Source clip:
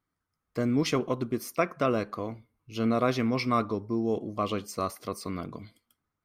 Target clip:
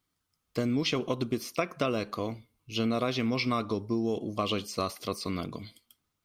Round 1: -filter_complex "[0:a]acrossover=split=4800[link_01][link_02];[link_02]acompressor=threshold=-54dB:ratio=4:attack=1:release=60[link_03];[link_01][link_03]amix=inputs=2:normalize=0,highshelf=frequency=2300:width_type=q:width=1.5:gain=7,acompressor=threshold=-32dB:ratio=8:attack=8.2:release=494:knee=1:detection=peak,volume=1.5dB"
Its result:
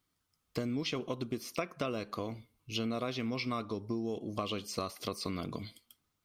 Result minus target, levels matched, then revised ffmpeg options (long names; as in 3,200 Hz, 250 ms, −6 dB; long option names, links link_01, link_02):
downward compressor: peak gain reduction +6.5 dB
-filter_complex "[0:a]acrossover=split=4800[link_01][link_02];[link_02]acompressor=threshold=-54dB:ratio=4:attack=1:release=60[link_03];[link_01][link_03]amix=inputs=2:normalize=0,highshelf=frequency=2300:width_type=q:width=1.5:gain=7,acompressor=threshold=-24.5dB:ratio=8:attack=8.2:release=494:knee=1:detection=peak,volume=1.5dB"